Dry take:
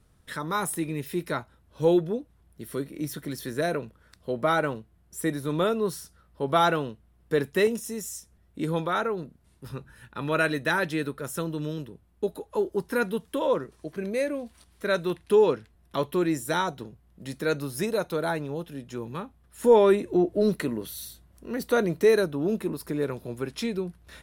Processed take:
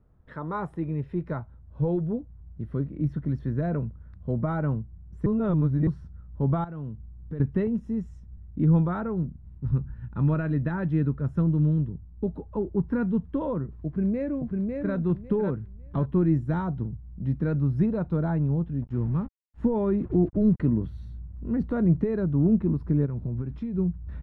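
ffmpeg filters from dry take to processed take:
-filter_complex "[0:a]asettb=1/sr,asplit=3[a][b][c];[a]atrim=end=6.644[d];[b]atrim=start=6.64:end=7.4,asetpts=PTS-STARTPTS,afade=t=in:d=0.004:c=qsin,afade=t=out:st=0.756:d=0.004:c=qsin,acompressor=threshold=-45dB:ratio=2:attack=3.2:release=140:knee=1:detection=peak[e];[c]atrim=start=7.396[f];[d][e]acrossfade=d=0.004:c1=hsin:c2=qsin[g];[g][f]acrossfade=d=0.004:c1=qsin:c2=hsin,asplit=2[h][i];[i]afade=t=in:st=13.86:d=0.01,afade=t=out:st=14.95:d=0.01,aecho=0:1:550|1100|1650:0.707946|0.141589|0.0283178[j];[h][j]amix=inputs=2:normalize=0,asettb=1/sr,asplit=3[k][l][m];[k]atrim=end=18.824[n];[l]atrim=start=18.82:end=20.68,asetpts=PTS-STARTPTS,afade=t=in:d=0.004:c=qsin,afade=t=out:st=1.856:d=0.004:c=qsin,acrusher=bits=6:mix=0:aa=0.5[o];[m]atrim=start=20.676[p];[n][o]acrossfade=d=0.004:c1=hsin:c2=qsin[q];[q][p]acrossfade=d=0.004:c1=qsin:c2=hsin,asplit=3[r][s][t];[r]afade=t=out:st=23.05:d=0.02[u];[s]acompressor=threshold=-34dB:ratio=6:attack=3.2:release=140:knee=1:detection=peak,afade=t=in:st=23.05:d=0.02,afade=t=out:st=23.77:d=0.02[v];[t]afade=t=in:st=23.77:d=0.02[w];[u][v][w]amix=inputs=3:normalize=0,asplit=3[x][y][z];[x]atrim=end=5.262[aa];[y]atrim=start=5.258:end=5.872,asetpts=PTS-STARTPTS,areverse[ab];[z]atrim=start=5.868[ac];[aa][ab]acrossfade=d=0.004:c1=hsin:c2=hsin[ad];[ad][ac]acrossfade=d=0.004:c1=hsin:c2=hsin,alimiter=limit=-17.5dB:level=0:latency=1:release=195,lowpass=1k,asubboost=boost=10:cutoff=150"

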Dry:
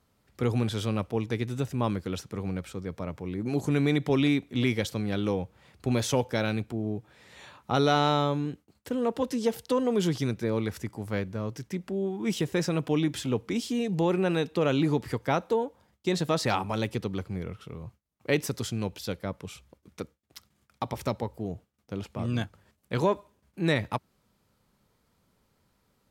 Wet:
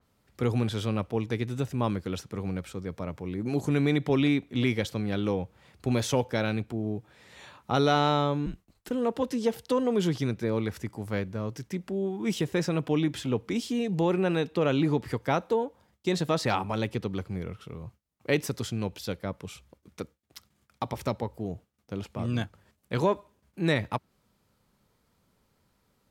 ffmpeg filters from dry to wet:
-filter_complex "[0:a]asettb=1/sr,asplit=3[a][b][c];[a]atrim=end=8.464[d];[b]atrim=start=8.46:end=8.91,asetpts=PTS-STARTPTS,afade=t=in:d=0.004:c=qsin,afade=t=out:st=0.446:d=0.004:c=qsin,afreqshift=-110[e];[c]atrim=start=8.906[f];[d][e]acrossfade=d=0.004:c1=hsin:c2=qsin[g];[g][f]acrossfade=d=0.004:c1=qsin:c2=hsin,adynamicequalizer=threshold=0.00447:dfrequency=4400:dqfactor=0.7:tfrequency=4400:tqfactor=0.7:attack=5:release=100:ratio=0.375:range=3:mode=cutabove:tftype=highshelf"

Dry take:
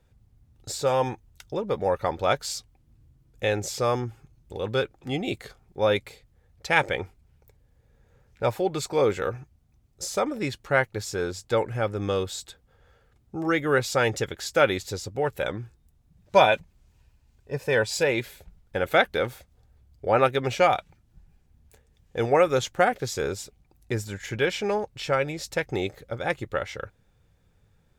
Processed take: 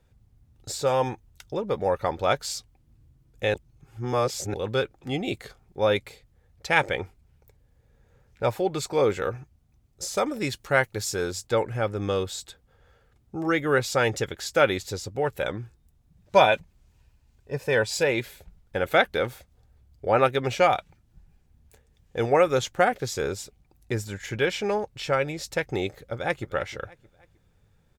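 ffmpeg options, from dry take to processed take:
-filter_complex "[0:a]asettb=1/sr,asplit=3[a][b][c];[a]atrim=end=10.174[d];[b]atrim=start=10.17:end=11.47,asetpts=PTS-STARTPTS,afade=t=in:d=0.004:c=qsin,afade=t=out:st=1.296:d=0.004:c=qsin,highshelf=f=4.6k:g=8[e];[c]atrim=start=11.466[f];[d][e]acrossfade=d=0.004:c1=hsin:c2=qsin[g];[g][f]acrossfade=d=0.004:c1=qsin:c2=hsin,asplit=2[h][i];[i]afade=t=in:st=26.03:d=0.01,afade=t=out:st=26.5:d=0.01,aecho=0:1:310|620|930:0.149624|0.0598494|0.0239398[j];[h][j]amix=inputs=2:normalize=0,asplit=3[k][l][m];[k]atrim=end=3.542[n];[l]atrim=start=3.538:end=4.542,asetpts=PTS-STARTPTS,areverse[o];[m]atrim=start=4.538[p];[n][o]acrossfade=d=0.004:c1=hsin:c2=hsin[q];[q][p]acrossfade=d=0.004:c1=hsin:c2=hsin"

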